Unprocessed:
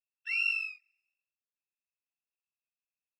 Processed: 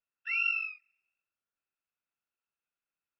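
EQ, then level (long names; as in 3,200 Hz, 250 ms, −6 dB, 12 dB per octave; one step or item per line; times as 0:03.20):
low-pass filter 2,700 Hz 12 dB per octave
parametric band 1,400 Hz +11 dB 0.23 octaves
+3.0 dB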